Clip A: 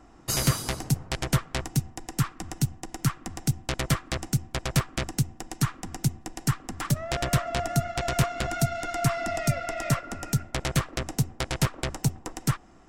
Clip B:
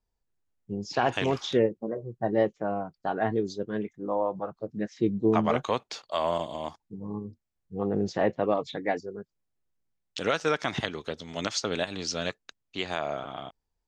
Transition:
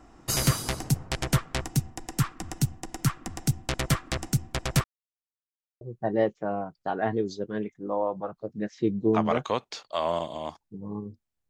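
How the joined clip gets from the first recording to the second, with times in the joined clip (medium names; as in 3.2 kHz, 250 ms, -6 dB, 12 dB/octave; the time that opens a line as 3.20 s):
clip A
4.84–5.81 s: mute
5.81 s: go over to clip B from 2.00 s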